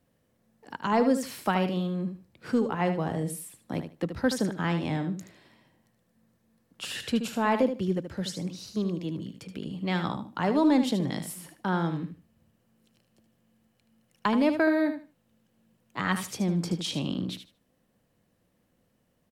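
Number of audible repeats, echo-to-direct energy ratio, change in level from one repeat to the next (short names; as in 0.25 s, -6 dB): 2, -9.0 dB, -14.5 dB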